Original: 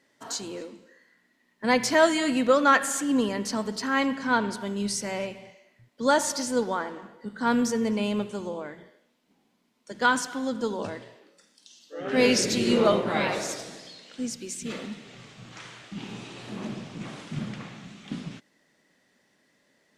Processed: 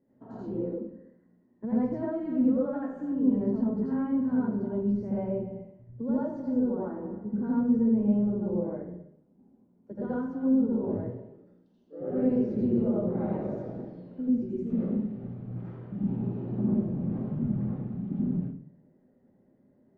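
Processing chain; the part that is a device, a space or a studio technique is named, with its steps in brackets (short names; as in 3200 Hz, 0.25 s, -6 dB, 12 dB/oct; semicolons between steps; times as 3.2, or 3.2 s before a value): television next door (compressor 4:1, threshold -32 dBFS, peak gain reduction 15 dB; LPF 370 Hz 12 dB/oct; reverb RT60 0.45 s, pre-delay 76 ms, DRR -7 dB); gain +1.5 dB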